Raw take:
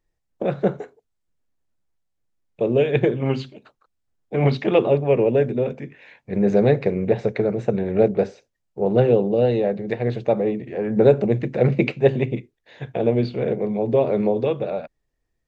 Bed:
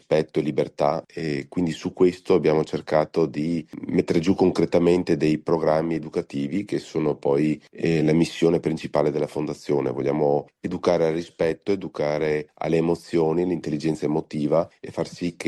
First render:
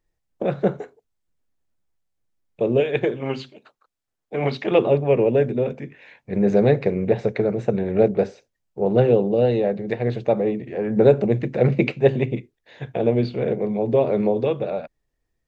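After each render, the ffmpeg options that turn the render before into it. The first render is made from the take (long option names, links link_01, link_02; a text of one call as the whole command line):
ffmpeg -i in.wav -filter_complex "[0:a]asettb=1/sr,asplit=3[link_01][link_02][link_03];[link_01]atrim=end=2.804[link_04];[link_02]atrim=start=2.8:end=4.71,asetpts=PTS-STARTPTS,afade=type=in:duration=0.004:curve=qsin,afade=type=out:start_time=1.906:duration=0.004:curve=qsin,lowshelf=frequency=220:gain=-11.5[link_05];[link_03]atrim=start=4.706[link_06];[link_04][link_05]acrossfade=duration=0.004:curve1=hsin:curve2=qsin[link_07];[link_07][link_06]acrossfade=duration=0.004:curve1=qsin:curve2=hsin" out.wav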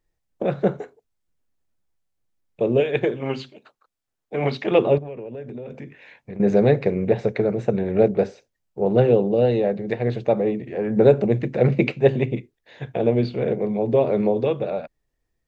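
ffmpeg -i in.wav -filter_complex "[0:a]asettb=1/sr,asplit=3[link_01][link_02][link_03];[link_01]atrim=end=4.984[link_04];[link_02]atrim=start=4.98:end=6.4,asetpts=PTS-STARTPTS,afade=type=in:duration=0.004:curve=qsin,afade=type=out:start_time=1.416:duration=0.004:curve=qsin,acompressor=threshold=-30dB:ratio=16:attack=3.2:release=140:knee=1:detection=peak[link_05];[link_03]atrim=start=6.396[link_06];[link_04][link_05]acrossfade=duration=0.004:curve1=hsin:curve2=qsin[link_07];[link_07][link_06]acrossfade=duration=0.004:curve1=qsin:curve2=hsin" out.wav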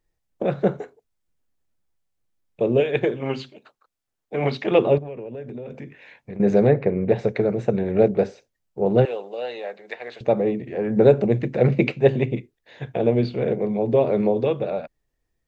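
ffmpeg -i in.wav -filter_complex "[0:a]asettb=1/sr,asplit=3[link_01][link_02][link_03];[link_01]atrim=end=6.674[link_04];[link_02]atrim=start=6.67:end=7.09,asetpts=PTS-STARTPTS,afade=type=in:duration=0.004:curve=qsin,afade=type=out:start_time=0.416:duration=0.004:curve=qsin,lowpass=2100[link_05];[link_03]atrim=start=7.086[link_06];[link_04][link_05]acrossfade=duration=0.004:curve1=hsin:curve2=qsin[link_07];[link_07][link_06]acrossfade=duration=0.004:curve1=qsin:curve2=hsin,asettb=1/sr,asplit=3[link_08][link_09][link_10];[link_08]atrim=end=9.054[link_11];[link_09]atrim=start=9.05:end=10.21,asetpts=PTS-STARTPTS,afade=type=in:duration=0.004:curve=qsin,afade=type=out:start_time=1.156:duration=0.004:curve=qsin,highpass=940[link_12];[link_10]atrim=start=10.206[link_13];[link_11][link_12]acrossfade=duration=0.004:curve1=hsin:curve2=qsin[link_14];[link_14][link_13]acrossfade=duration=0.004:curve1=qsin:curve2=hsin" out.wav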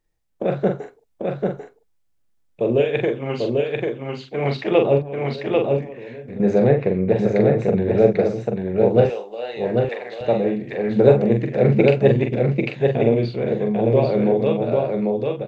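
ffmpeg -i in.wav -filter_complex "[0:a]asplit=2[link_01][link_02];[link_02]adelay=43,volume=-5.5dB[link_03];[link_01][link_03]amix=inputs=2:normalize=0,aecho=1:1:793:0.708" out.wav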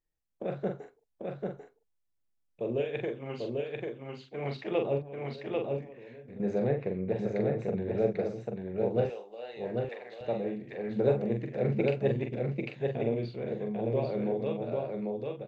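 ffmpeg -i in.wav -af "volume=-13dB" out.wav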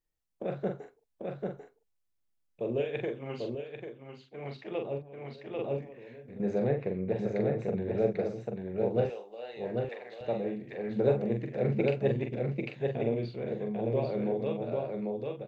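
ffmpeg -i in.wav -filter_complex "[0:a]asplit=3[link_01][link_02][link_03];[link_01]atrim=end=3.552[link_04];[link_02]atrim=start=3.548:end=5.592,asetpts=PTS-STARTPTS,volume=-5.5dB[link_05];[link_03]atrim=start=5.588[link_06];[link_04][link_05]acrossfade=duration=0.004:curve1=hsin:curve2=hsin[link_07];[link_07][link_06]acrossfade=duration=0.004:curve1=hsin:curve2=hsin" out.wav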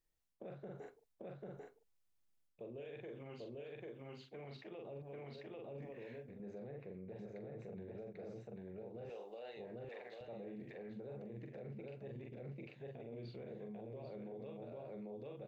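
ffmpeg -i in.wav -af "areverse,acompressor=threshold=-40dB:ratio=6,areverse,alimiter=level_in=17.5dB:limit=-24dB:level=0:latency=1:release=88,volume=-17.5dB" out.wav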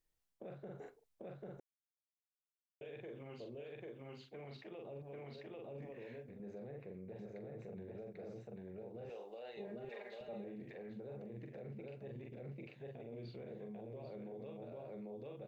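ffmpeg -i in.wav -filter_complex "[0:a]asettb=1/sr,asplit=3[link_01][link_02][link_03];[link_01]atrim=end=9.574[link_04];[link_02]atrim=start=9.57:end=10.44,asetpts=PTS-STARTPTS,afade=type=in:duration=0.004:curve=qsin,afade=type=out:start_time=0.866:duration=0.004:curve=qsin,aecho=1:1:4.9:0.77,atrim=end_sample=38367[link_05];[link_03]atrim=start=10.436[link_06];[link_04][link_05]acrossfade=duration=0.004:curve1=hsin:curve2=qsin[link_07];[link_07][link_06]acrossfade=duration=0.004:curve1=qsin:curve2=hsin,asplit=3[link_08][link_09][link_10];[link_08]atrim=end=1.6,asetpts=PTS-STARTPTS,afade=type=out:start_time=1.596:duration=0.004:curve=hsin[link_11];[link_09]atrim=start=1.6:end=2.81,asetpts=PTS-STARTPTS,volume=0[link_12];[link_10]atrim=start=2.81,asetpts=PTS-STARTPTS,afade=type=in:duration=0.004:curve=hsin[link_13];[link_11][link_12][link_13]concat=n=3:v=0:a=1" out.wav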